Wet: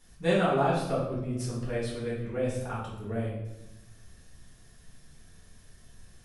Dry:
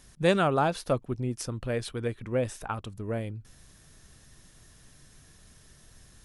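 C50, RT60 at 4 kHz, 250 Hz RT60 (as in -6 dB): 2.0 dB, 0.70 s, 1.3 s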